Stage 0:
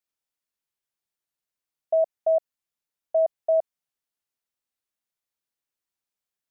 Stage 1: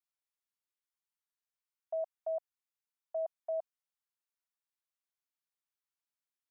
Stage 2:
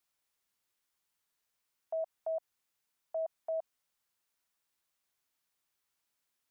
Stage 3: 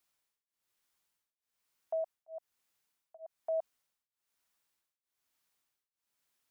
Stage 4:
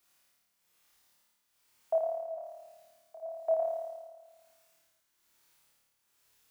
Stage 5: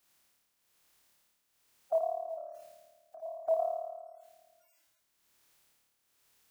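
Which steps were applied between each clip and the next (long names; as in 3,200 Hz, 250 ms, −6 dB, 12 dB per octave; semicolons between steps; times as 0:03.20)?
low shelf with overshoot 650 Hz −11.5 dB, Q 1.5; level −8.5 dB
brickwall limiter −41 dBFS, peak gain reduction 10.5 dB; level +10.5 dB
tremolo along a rectified sine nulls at 1.1 Hz; level +2.5 dB
flutter between parallel walls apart 4.7 metres, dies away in 1.4 s; level +6 dB
spectral magnitudes quantised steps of 30 dB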